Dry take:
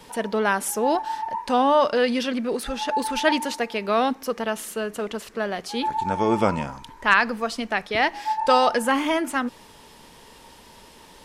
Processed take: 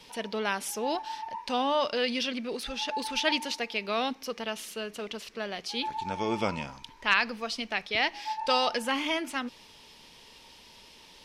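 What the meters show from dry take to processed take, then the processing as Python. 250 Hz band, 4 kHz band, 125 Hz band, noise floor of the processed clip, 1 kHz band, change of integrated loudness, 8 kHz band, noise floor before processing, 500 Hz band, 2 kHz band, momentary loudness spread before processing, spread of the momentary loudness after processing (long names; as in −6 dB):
−9.0 dB, 0.0 dB, −9.0 dB, −54 dBFS, −9.0 dB, −7.0 dB, −6.5 dB, −49 dBFS, −9.0 dB, −6.0 dB, 10 LU, 11 LU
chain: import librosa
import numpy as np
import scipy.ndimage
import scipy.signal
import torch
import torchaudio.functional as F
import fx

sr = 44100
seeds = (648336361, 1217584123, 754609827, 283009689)

y = fx.band_shelf(x, sr, hz=3600.0, db=9.0, octaves=1.7)
y = F.gain(torch.from_numpy(y), -9.0).numpy()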